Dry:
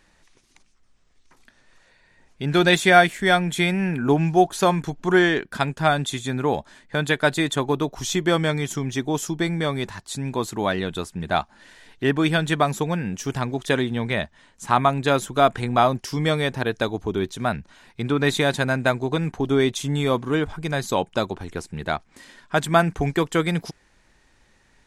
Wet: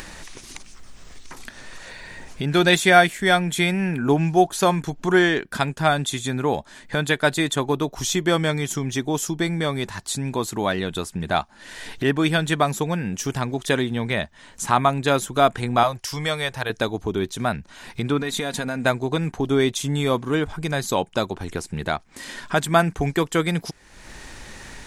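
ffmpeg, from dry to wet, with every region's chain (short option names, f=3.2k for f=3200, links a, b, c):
-filter_complex "[0:a]asettb=1/sr,asplit=3[a][b][c];[a]atrim=end=15.834[d];[b]atrim=start=15.83:end=16.7,asetpts=PTS-STARTPTS,afade=t=in:d=0.004:c=qsin,afade=t=out:st=0.866:d=0.004:c=qsin,equalizer=f=240:t=o:w=1.3:g=-15,bandreject=f=390:w=9.8[e];[c]atrim=start=16.696[f];[d][e]acrossfade=d=0.004:c1=hsin:c2=qsin[g];[g][f]acrossfade=d=0.004:c1=qsin:c2=hsin,asettb=1/sr,asplit=3[h][i][j];[h]atrim=end=18.194[k];[i]atrim=start=18.19:end=18.84,asetpts=PTS-STARTPTS,afade=t=in:d=0.004:c=qsin,afade=t=out:st=0.646:d=0.004:c=qsin,acompressor=threshold=-24dB:ratio=5:attack=3.2:release=140:knee=1:detection=peak,aecho=1:1:4.2:0.44,atrim=end_sample=28665[l];[j]atrim=start=18.836[m];[k][l]acrossfade=d=0.004:c1=hsin:c2=qsin[n];[n][m]acrossfade=d=0.004:c1=qsin:c2=hsin,highshelf=f=5.9k:g=5,acompressor=mode=upward:threshold=-22dB:ratio=2.5"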